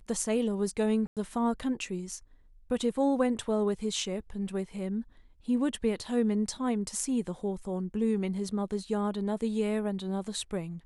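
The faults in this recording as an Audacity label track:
1.070000	1.170000	gap 97 ms

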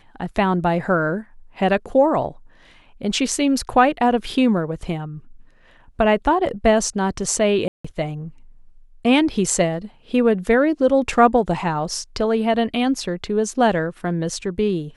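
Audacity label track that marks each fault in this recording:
7.680000	7.840000	gap 0.165 s

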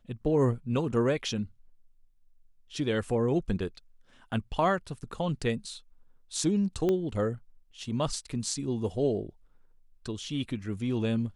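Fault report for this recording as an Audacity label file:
6.890000	6.890000	pop -17 dBFS

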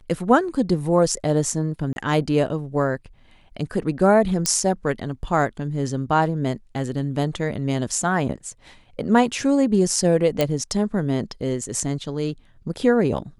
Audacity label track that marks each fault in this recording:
1.930000	1.960000	gap 31 ms
4.460000	4.460000	pop -5 dBFS
10.410000	10.410000	pop -6 dBFS

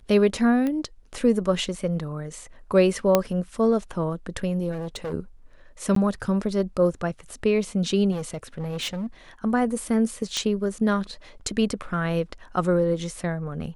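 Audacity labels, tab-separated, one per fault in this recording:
0.670000	0.670000	pop -16 dBFS
3.150000	3.150000	pop -4 dBFS
4.710000	5.130000	clipped -27 dBFS
5.950000	5.960000	gap 13 ms
8.110000	9.070000	clipped -25.5 dBFS
10.370000	10.370000	pop -13 dBFS

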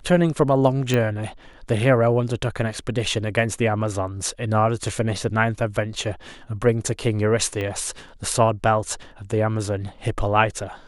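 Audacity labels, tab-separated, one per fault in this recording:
0.940000	0.940000	pop -9 dBFS
7.610000	7.610000	pop -16 dBFS

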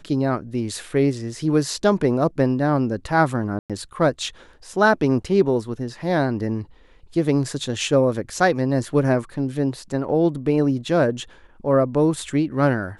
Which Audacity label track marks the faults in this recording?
3.590000	3.700000	gap 0.107 s

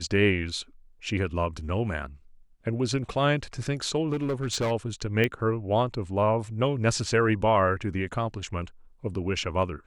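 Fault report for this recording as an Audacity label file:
4.120000	4.720000	clipped -23 dBFS
5.240000	5.240000	pop -13 dBFS

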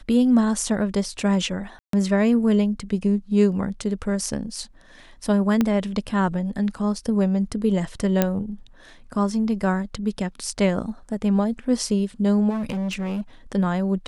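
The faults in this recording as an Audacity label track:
1.790000	1.930000	gap 0.143 s
5.610000	5.610000	pop -8 dBFS
8.220000	8.220000	pop -5 dBFS
12.490000	13.210000	clipped -23.5 dBFS

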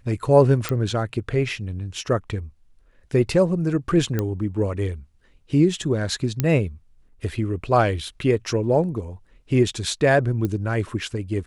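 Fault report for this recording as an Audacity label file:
0.690000	0.690000	pop -8 dBFS
4.190000	4.190000	pop -11 dBFS
6.400000	6.400000	pop -7 dBFS
10.450000	10.450000	pop -14 dBFS

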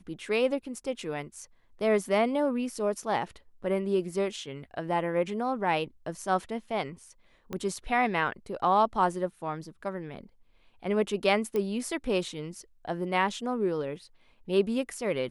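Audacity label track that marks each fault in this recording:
7.530000	7.530000	pop -21 dBFS
11.560000	11.560000	pop -19 dBFS

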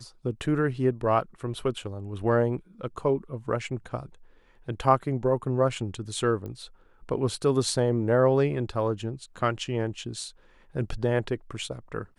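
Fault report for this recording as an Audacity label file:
6.460000	6.460000	pop -26 dBFS

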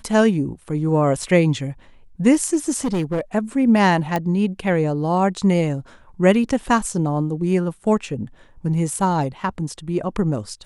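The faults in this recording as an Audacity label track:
2.800000	3.210000	clipped -17.5 dBFS
4.160000	4.160000	pop -9 dBFS

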